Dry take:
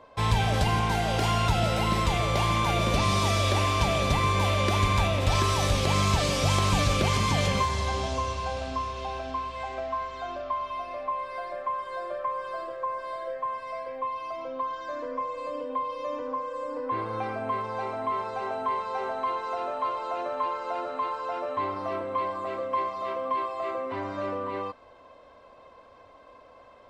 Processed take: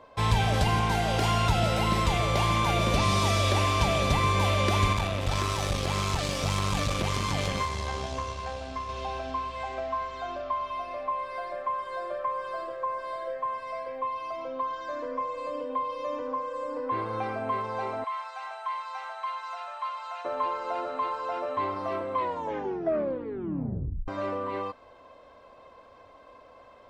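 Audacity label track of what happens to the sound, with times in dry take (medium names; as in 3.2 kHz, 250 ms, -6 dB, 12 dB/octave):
4.930000	8.890000	valve stage drive 20 dB, bias 0.75
18.040000	20.250000	Bessel high-pass 1.2 kHz, order 8
22.150000	22.150000	tape stop 1.93 s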